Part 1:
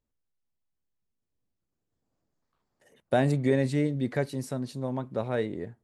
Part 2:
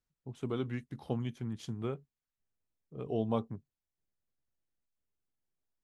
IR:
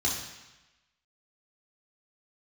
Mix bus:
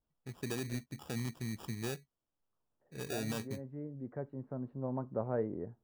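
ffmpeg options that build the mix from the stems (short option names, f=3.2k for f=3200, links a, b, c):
-filter_complex "[0:a]lowpass=f=1.3k:w=0.5412,lowpass=f=1.3k:w=1.3066,volume=-5dB[a];[1:a]alimiter=level_in=3dB:limit=-24dB:level=0:latency=1:release=40,volume=-3dB,acrusher=samples=21:mix=1:aa=0.000001,adynamicequalizer=threshold=0.00126:dfrequency=2900:dqfactor=0.7:tfrequency=2900:tqfactor=0.7:attack=5:release=100:ratio=0.375:range=3:mode=boostabove:tftype=highshelf,volume=-1.5dB,asplit=2[b][c];[c]apad=whole_len=257439[d];[a][d]sidechaincompress=threshold=-53dB:ratio=4:attack=38:release=1100[e];[e][b]amix=inputs=2:normalize=0"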